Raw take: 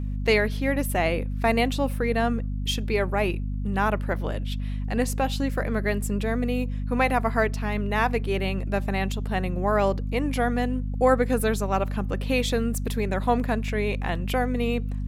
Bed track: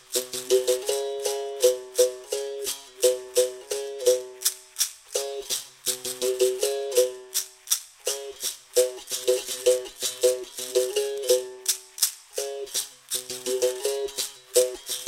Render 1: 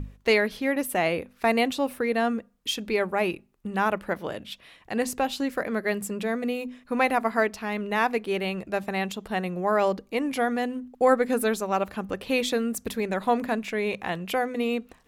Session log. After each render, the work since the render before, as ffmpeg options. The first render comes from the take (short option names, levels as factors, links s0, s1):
-af "bandreject=f=50:t=h:w=6,bandreject=f=100:t=h:w=6,bandreject=f=150:t=h:w=6,bandreject=f=200:t=h:w=6,bandreject=f=250:t=h:w=6"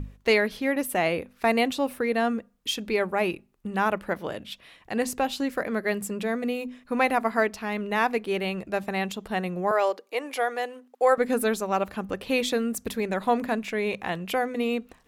-filter_complex "[0:a]asettb=1/sr,asplit=3[s0][s1][s2];[s0]atrim=end=9.714[s3];[s1]atrim=start=9.71:end=11.18,asetpts=PTS-STARTPTS,afade=t=in:d=0.004:c=qsin,afade=t=out:st=1.466:d=0.004:c=qsin,highpass=f=400:w=0.5412,highpass=f=400:w=1.3066[s4];[s2]atrim=start=11.176[s5];[s3][s4]acrossfade=d=0.004:c1=hsin:c2=qsin[s6];[s6][s5]acrossfade=d=0.004:c1=qsin:c2=hsin"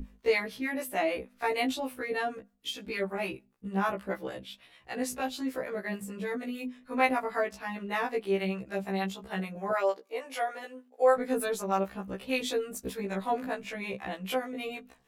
-filter_complex "[0:a]acrossover=split=640[s0][s1];[s0]aeval=exprs='val(0)*(1-0.7/2+0.7/2*cos(2*PI*6.6*n/s))':c=same[s2];[s1]aeval=exprs='val(0)*(1-0.7/2-0.7/2*cos(2*PI*6.6*n/s))':c=same[s3];[s2][s3]amix=inputs=2:normalize=0,afftfilt=real='re*1.73*eq(mod(b,3),0)':imag='im*1.73*eq(mod(b,3),0)':win_size=2048:overlap=0.75"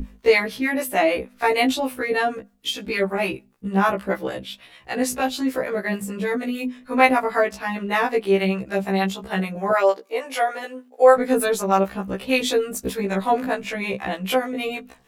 -af "volume=3.16"